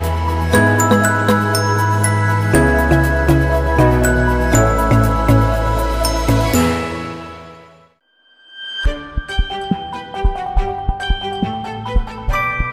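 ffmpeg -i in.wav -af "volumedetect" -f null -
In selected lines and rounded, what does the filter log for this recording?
mean_volume: -15.6 dB
max_volume: -3.3 dB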